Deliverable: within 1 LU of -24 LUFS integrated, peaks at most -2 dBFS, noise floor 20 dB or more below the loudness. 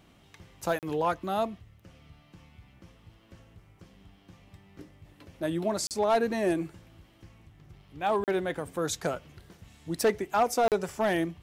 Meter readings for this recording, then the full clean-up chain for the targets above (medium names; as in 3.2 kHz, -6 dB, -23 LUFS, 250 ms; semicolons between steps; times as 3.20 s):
clipped samples 0.4%; clipping level -18.0 dBFS; dropouts 4; longest dropout 38 ms; loudness -29.5 LUFS; peak level -18.0 dBFS; loudness target -24.0 LUFS
-> clip repair -18 dBFS; interpolate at 0.79/5.87/8.24/10.68 s, 38 ms; trim +5.5 dB